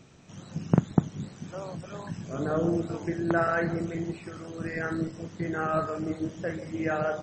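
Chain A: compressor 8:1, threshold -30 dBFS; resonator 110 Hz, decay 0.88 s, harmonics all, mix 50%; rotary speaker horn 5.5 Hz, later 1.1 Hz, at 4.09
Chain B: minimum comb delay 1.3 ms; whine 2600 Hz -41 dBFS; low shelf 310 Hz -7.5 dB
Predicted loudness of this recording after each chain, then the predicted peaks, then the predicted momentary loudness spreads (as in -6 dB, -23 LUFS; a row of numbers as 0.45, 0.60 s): -43.5, -34.5 LUFS; -24.5, -9.0 dBFS; 7, 9 LU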